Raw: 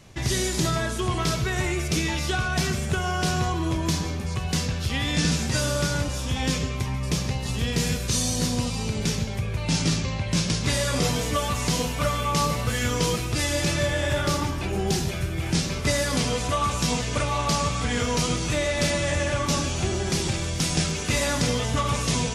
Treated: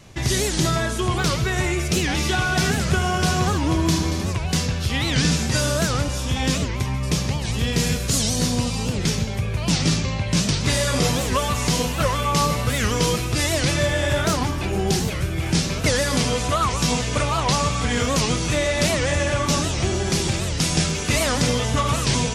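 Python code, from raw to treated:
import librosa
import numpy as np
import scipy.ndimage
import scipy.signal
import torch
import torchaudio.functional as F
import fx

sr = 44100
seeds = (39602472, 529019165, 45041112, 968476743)

y = fx.vibrato(x, sr, rate_hz=1.6, depth_cents=7.7)
y = fx.echo_heads(y, sr, ms=77, heads='first and third', feedback_pct=51, wet_db=-10, at=(2.09, 4.32), fade=0.02)
y = fx.record_warp(y, sr, rpm=78.0, depth_cents=250.0)
y = F.gain(torch.from_numpy(y), 3.5).numpy()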